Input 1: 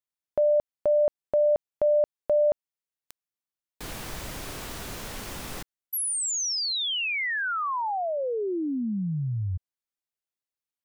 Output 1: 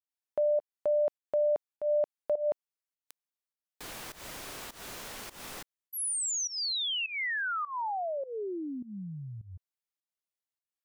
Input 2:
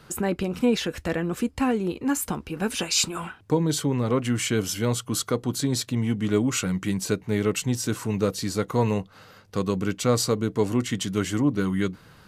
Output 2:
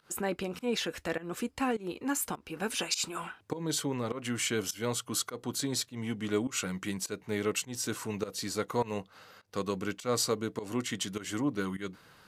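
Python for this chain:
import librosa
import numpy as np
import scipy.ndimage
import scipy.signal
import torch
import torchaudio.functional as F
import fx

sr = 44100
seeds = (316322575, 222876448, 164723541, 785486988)

y = fx.low_shelf(x, sr, hz=230.0, db=-12.0)
y = fx.volume_shaper(y, sr, bpm=102, per_beat=1, depth_db=-19, release_ms=201.0, shape='fast start')
y = y * 10.0 ** (-3.5 / 20.0)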